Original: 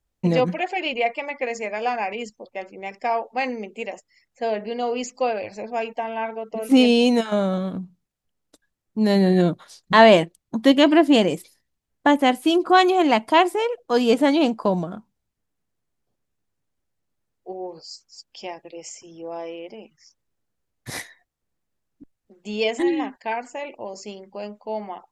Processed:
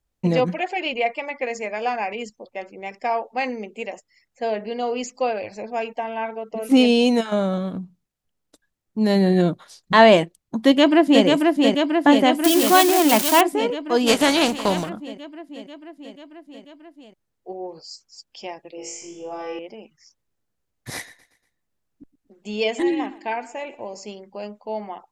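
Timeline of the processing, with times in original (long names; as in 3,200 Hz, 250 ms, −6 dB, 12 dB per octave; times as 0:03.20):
0:10.58–0:11.25: delay throw 490 ms, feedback 75%, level −3 dB
0:12.44–0:13.41: spike at every zero crossing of −9 dBFS
0:14.06–0:14.88: compressing power law on the bin magnitudes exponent 0.6
0:18.76–0:19.59: flutter between parallel walls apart 3.5 metres, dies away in 0.65 s
0:20.95–0:24.07: repeating echo 119 ms, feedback 46%, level −19 dB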